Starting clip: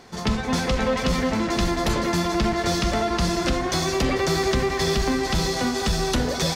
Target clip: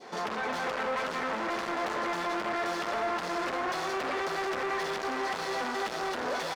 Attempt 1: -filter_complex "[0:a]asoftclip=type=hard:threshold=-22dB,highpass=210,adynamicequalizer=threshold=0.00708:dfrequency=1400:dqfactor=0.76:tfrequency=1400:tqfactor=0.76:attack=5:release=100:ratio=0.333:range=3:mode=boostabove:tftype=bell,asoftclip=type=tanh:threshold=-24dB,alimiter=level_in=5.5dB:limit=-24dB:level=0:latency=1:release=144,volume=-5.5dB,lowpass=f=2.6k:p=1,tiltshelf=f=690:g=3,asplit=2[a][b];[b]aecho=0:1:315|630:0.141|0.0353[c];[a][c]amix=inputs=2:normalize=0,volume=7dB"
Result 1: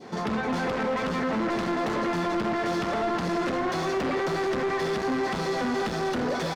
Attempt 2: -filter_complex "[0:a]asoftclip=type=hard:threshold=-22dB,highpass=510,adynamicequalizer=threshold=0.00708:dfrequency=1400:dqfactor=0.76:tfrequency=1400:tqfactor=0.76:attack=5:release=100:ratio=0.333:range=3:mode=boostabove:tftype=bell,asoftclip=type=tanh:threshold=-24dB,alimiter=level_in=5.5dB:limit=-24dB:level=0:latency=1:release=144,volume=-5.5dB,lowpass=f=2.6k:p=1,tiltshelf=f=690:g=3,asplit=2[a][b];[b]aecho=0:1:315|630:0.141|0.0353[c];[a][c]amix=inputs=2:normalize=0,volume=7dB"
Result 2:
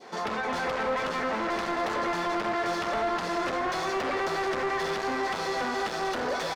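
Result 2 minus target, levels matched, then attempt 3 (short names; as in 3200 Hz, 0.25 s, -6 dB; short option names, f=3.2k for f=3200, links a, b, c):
hard clip: distortion -5 dB
-filter_complex "[0:a]asoftclip=type=hard:threshold=-30dB,highpass=510,adynamicequalizer=threshold=0.00708:dfrequency=1400:dqfactor=0.76:tfrequency=1400:tqfactor=0.76:attack=5:release=100:ratio=0.333:range=3:mode=boostabove:tftype=bell,asoftclip=type=tanh:threshold=-24dB,alimiter=level_in=5.5dB:limit=-24dB:level=0:latency=1:release=144,volume=-5.5dB,lowpass=f=2.6k:p=1,tiltshelf=f=690:g=3,asplit=2[a][b];[b]aecho=0:1:315|630:0.141|0.0353[c];[a][c]amix=inputs=2:normalize=0,volume=7dB"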